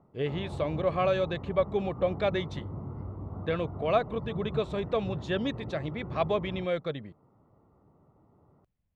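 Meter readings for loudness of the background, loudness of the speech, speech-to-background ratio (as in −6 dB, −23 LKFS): −40.5 LKFS, −31.0 LKFS, 9.5 dB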